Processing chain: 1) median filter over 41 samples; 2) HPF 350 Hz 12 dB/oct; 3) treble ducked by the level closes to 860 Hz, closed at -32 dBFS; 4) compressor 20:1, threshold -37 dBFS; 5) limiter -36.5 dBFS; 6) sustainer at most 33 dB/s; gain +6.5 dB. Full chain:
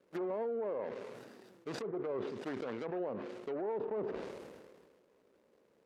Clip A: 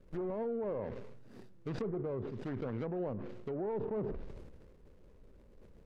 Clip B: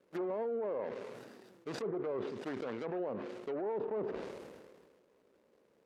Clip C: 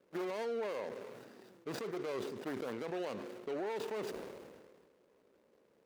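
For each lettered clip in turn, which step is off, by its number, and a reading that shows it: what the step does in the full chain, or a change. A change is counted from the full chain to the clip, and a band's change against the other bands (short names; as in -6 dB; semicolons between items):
2, crest factor change -1.5 dB; 4, mean gain reduction 4.0 dB; 3, 4 kHz band +6.0 dB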